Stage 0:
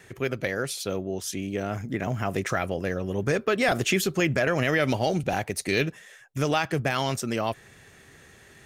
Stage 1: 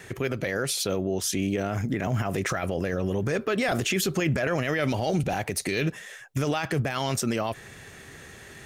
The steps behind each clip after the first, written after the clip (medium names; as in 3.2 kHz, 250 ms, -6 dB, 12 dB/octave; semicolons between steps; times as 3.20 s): peak limiter -23.5 dBFS, peak gain reduction 11 dB; trim +6.5 dB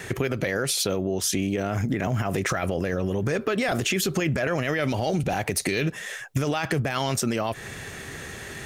compression 5:1, threshold -30 dBFS, peak gain reduction 9 dB; trim +8 dB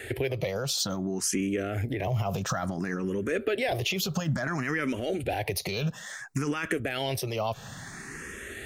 barber-pole phaser +0.58 Hz; trim -1 dB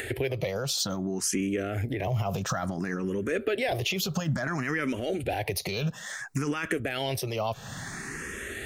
upward compressor, threshold -31 dBFS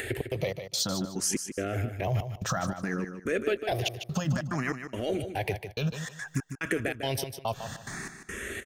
trance gate "xx.xx..x" 143 bpm -60 dB; on a send: feedback delay 151 ms, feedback 25%, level -9 dB